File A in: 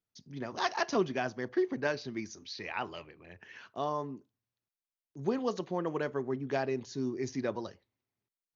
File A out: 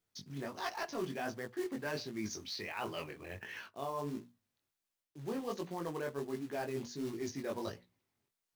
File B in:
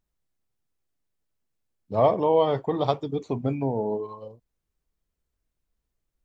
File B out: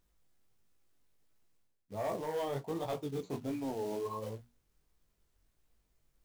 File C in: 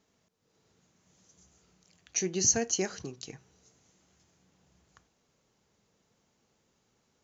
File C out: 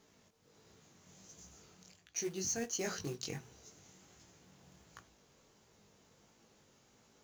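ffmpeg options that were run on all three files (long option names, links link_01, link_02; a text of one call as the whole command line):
ffmpeg -i in.wav -af "asoftclip=type=tanh:threshold=-15dB,bandreject=frequency=60:width_type=h:width=6,bandreject=frequency=120:width_type=h:width=6,bandreject=frequency=180:width_type=h:width=6,bandreject=frequency=240:width_type=h:width=6,acrusher=bits=4:mode=log:mix=0:aa=0.000001,flanger=delay=17.5:depth=4.7:speed=1.4,areverse,acompressor=threshold=-47dB:ratio=4,areverse,volume=9dB" out.wav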